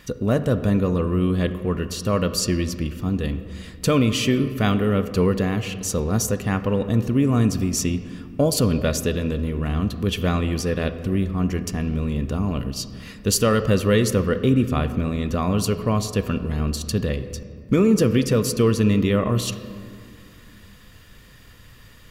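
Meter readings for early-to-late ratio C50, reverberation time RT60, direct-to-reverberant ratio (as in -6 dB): 11.5 dB, 2.2 s, 10.0 dB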